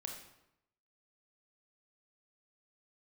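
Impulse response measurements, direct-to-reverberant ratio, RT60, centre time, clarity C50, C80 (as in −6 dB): 1.5 dB, 0.85 s, 33 ms, 4.5 dB, 7.5 dB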